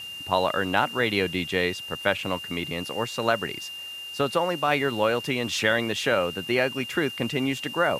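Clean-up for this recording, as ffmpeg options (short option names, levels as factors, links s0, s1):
-af "adeclick=t=4,bandreject=f=2800:w=30,afwtdn=0.0035"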